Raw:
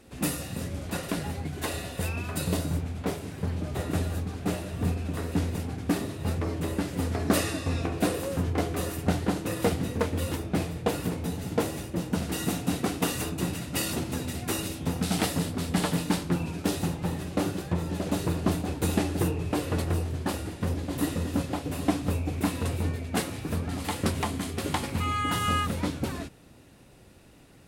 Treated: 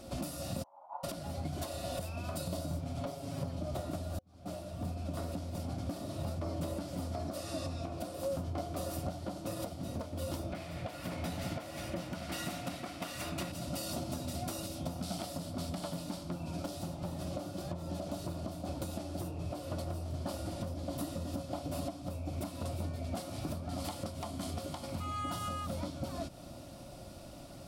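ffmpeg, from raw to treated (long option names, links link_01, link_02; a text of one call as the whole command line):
ffmpeg -i in.wav -filter_complex "[0:a]asplit=3[link_01][link_02][link_03];[link_01]afade=type=out:start_time=0.62:duration=0.02[link_04];[link_02]asuperpass=centerf=900:order=4:qfactor=5.4,afade=type=in:start_time=0.62:duration=0.02,afade=type=out:start_time=1.03:duration=0.02[link_05];[link_03]afade=type=in:start_time=1.03:duration=0.02[link_06];[link_04][link_05][link_06]amix=inputs=3:normalize=0,asettb=1/sr,asplit=3[link_07][link_08][link_09];[link_07]atrim=end=2.824[link_10];[link_08]atrim=start=2.82:end=3.59,asetpts=PTS-STARTPTS,afade=type=in:duration=0.004:curve=qsin,afade=type=out:start_time=0.766:duration=0.004:curve=qsin,aecho=1:1:7.3:0.67,atrim=end_sample=33957[link_11];[link_09]atrim=start=3.586[link_12];[link_10][link_11]acrossfade=duration=0.004:curve1=hsin:curve2=qsin[link_13];[link_13][link_12]acrossfade=duration=0.004:curve1=qsin:curve2=hsin,asettb=1/sr,asplit=3[link_14][link_15][link_16];[link_14]atrim=end=10.524[link_17];[link_15]atrim=start=10.52:end=13.52,asetpts=PTS-STARTPTS,afade=type=in:duration=0.004:curve=qsin,afade=type=out:start_time=2.996:duration=0.004:curve=qsin,equalizer=frequency=2000:width_type=o:width=1.3:gain=15[link_18];[link_16]atrim=start=13.516[link_19];[link_17][link_18]acrossfade=duration=0.004:curve1=hsin:curve2=qsin[link_20];[link_20][link_19]acrossfade=duration=0.004:curve1=qsin:curve2=hsin,asplit=2[link_21][link_22];[link_21]atrim=end=4.19,asetpts=PTS-STARTPTS,afade=type=out:start_time=4.186:duration=0.004:curve=hsin[link_23];[link_22]atrim=start=4.19,asetpts=PTS-STARTPTS,afade=type=in:duration=2.52[link_24];[link_23][link_24]concat=n=2:v=0:a=1,acompressor=threshold=-39dB:ratio=5,superequalizer=7b=0.447:8b=2.51:11b=0.355:12b=0.562:14b=1.58,alimiter=level_in=7.5dB:limit=-24dB:level=0:latency=1:release=347,volume=-7.5dB,volume=4.5dB" out.wav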